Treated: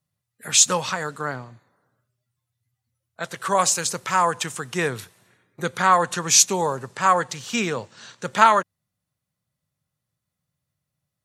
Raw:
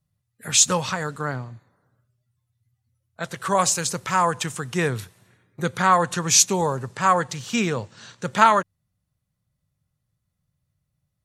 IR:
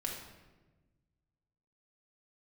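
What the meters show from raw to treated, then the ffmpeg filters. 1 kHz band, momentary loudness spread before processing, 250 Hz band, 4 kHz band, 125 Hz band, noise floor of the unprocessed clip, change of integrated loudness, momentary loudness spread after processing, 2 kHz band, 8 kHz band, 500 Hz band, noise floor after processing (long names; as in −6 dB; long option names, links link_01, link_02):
+0.5 dB, 17 LU, −3.0 dB, +1.0 dB, −5.0 dB, −78 dBFS, +0.5 dB, 15 LU, +1.0 dB, +1.0 dB, 0.0 dB, −83 dBFS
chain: -af "highpass=frequency=270:poles=1,volume=1dB"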